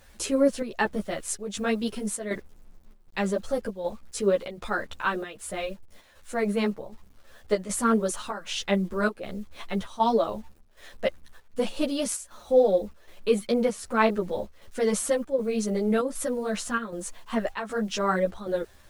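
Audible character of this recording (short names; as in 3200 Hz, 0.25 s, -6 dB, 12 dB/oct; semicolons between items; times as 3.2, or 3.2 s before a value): a quantiser's noise floor 10-bit, dither none; chopped level 1.3 Hz, depth 60%, duty 80%; a shimmering, thickened sound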